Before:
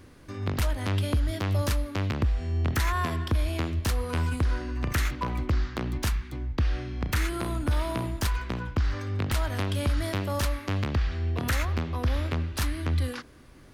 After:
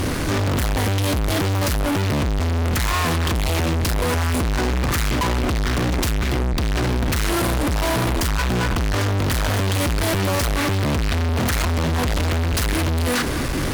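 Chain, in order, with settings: in parallel at +1 dB: compression, threshold -33 dBFS, peak gain reduction 11.5 dB; on the sum: fuzz box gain 48 dB, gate -56 dBFS; trim -6 dB

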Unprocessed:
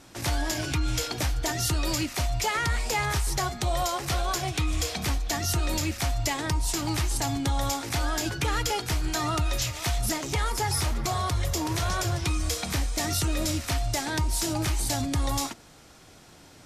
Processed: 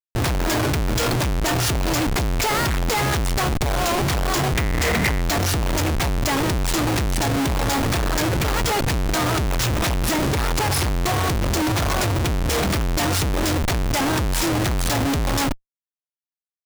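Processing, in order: Schmitt trigger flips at -31 dBFS; 4.55–5.21 s: peaking EQ 2 kHz +11 dB 0.37 oct; trim +7 dB

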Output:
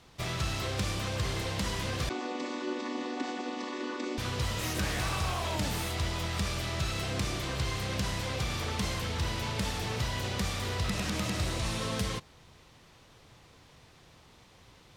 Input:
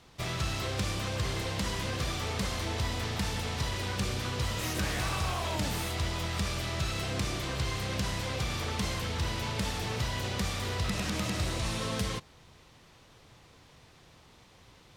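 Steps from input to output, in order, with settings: 2.09–4.18 s: vocoder on a held chord minor triad, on B3

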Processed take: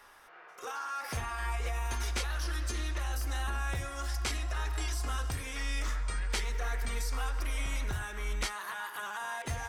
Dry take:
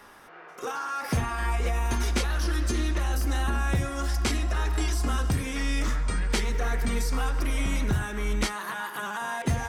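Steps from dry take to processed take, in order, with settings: peaking EQ 200 Hz -13.5 dB 2 oct; trim -4.5 dB

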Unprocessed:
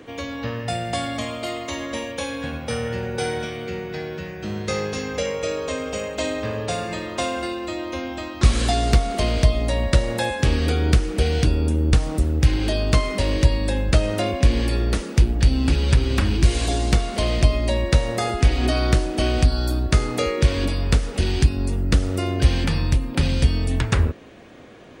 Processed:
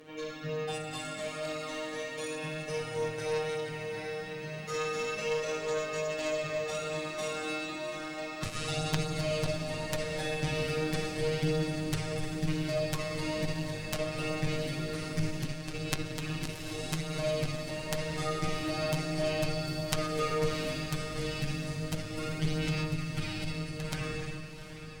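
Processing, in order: valve stage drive 6 dB, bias 0.65; robot voice 155 Hz; Schroeder reverb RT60 2.9 s, DRR 0.5 dB; chorus voices 2, 0.33 Hz, delay 11 ms, depth 4.6 ms; Chebyshev shaper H 4 -8 dB, 8 -28 dB, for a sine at -2.5 dBFS; on a send: echo that smears into a reverb 740 ms, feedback 59%, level -11 dB

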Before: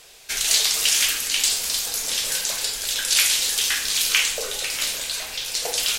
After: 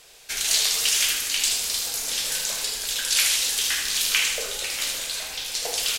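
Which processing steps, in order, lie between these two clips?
feedback delay 77 ms, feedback 51%, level -7 dB; trim -3 dB

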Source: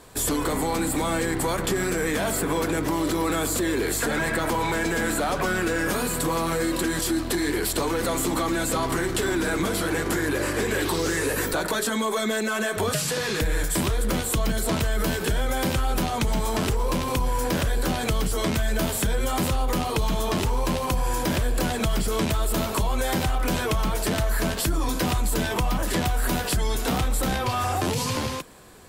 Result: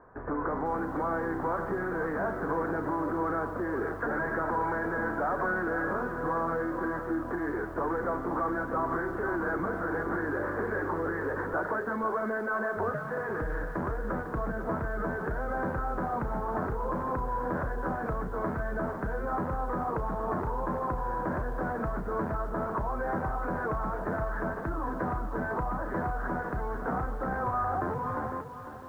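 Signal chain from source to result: steep low-pass 1.6 kHz 48 dB/octave; bass shelf 480 Hz -9 dB; bit-crushed delay 501 ms, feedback 35%, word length 9-bit, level -10 dB; trim -1 dB

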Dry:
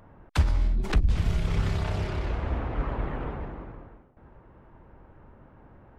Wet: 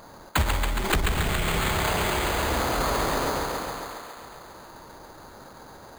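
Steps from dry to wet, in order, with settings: hum notches 50/100 Hz; thinning echo 138 ms, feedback 76%, high-pass 300 Hz, level -5 dB; in parallel at -6 dB: hard clipper -23 dBFS, distortion -10 dB; on the sum: overdrive pedal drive 14 dB, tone 5.9 kHz, clips at -10.5 dBFS; careless resampling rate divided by 8×, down none, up hold

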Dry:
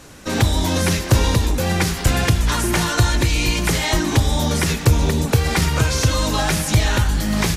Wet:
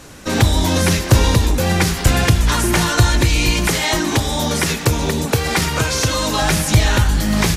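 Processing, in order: 3.67–6.42 s: bass shelf 120 Hz -11 dB; trim +3 dB

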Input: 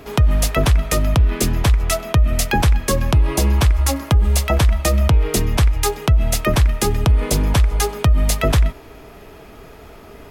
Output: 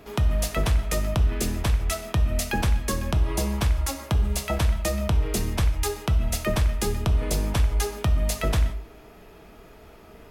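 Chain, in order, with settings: gated-style reverb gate 200 ms falling, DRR 7 dB; trim -8.5 dB

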